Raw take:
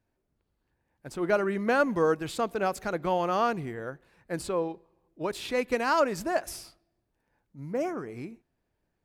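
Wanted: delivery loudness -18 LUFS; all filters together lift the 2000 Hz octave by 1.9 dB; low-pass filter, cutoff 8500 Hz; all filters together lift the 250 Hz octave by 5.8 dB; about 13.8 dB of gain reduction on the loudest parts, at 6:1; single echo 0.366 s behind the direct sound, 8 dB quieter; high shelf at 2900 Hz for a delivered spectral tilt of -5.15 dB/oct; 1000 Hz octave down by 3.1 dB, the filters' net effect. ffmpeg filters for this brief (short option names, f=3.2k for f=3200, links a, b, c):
-af "lowpass=8.5k,equalizer=f=250:t=o:g=8,equalizer=f=1k:t=o:g=-6.5,equalizer=f=2k:t=o:g=8,highshelf=f=2.9k:g=-6.5,acompressor=threshold=-34dB:ratio=6,aecho=1:1:366:0.398,volume=20.5dB"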